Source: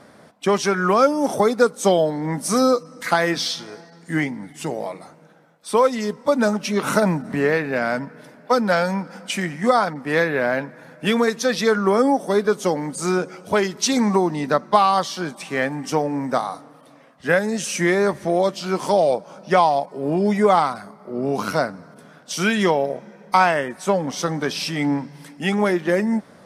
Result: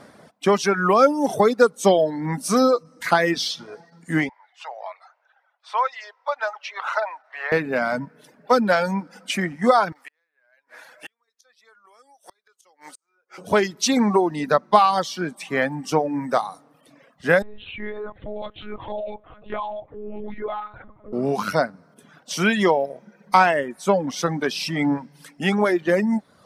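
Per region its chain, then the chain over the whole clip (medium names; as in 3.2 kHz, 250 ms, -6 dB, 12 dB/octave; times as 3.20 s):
4.29–7.52 s: steep high-pass 690 Hz + distance through air 220 m
9.92–13.38 s: high-pass 920 Hz + inverted gate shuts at -22 dBFS, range -40 dB + three bands compressed up and down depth 70%
17.42–21.13 s: monotone LPC vocoder at 8 kHz 210 Hz + compression 2:1, threshold -36 dBFS
whole clip: reverb removal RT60 0.93 s; dynamic bell 8.7 kHz, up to -4 dB, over -45 dBFS, Q 0.81; trim +1 dB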